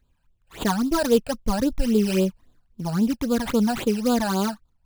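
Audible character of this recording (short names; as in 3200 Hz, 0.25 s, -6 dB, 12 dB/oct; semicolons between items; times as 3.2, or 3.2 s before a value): aliases and images of a low sample rate 5500 Hz, jitter 20%; phasing stages 12, 3.7 Hz, lowest notch 340–2000 Hz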